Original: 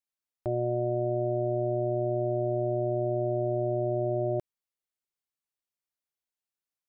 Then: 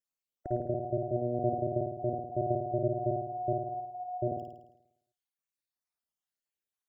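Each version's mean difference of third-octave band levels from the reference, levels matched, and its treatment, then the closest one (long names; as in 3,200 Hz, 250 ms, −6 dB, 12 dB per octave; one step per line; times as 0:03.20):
4.0 dB: time-frequency cells dropped at random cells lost 63%
flutter between parallel walls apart 9.2 metres, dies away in 0.83 s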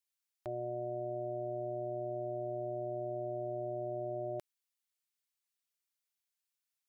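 1.5 dB: tilt shelving filter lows −9.5 dB, about 870 Hz
level −5.5 dB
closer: second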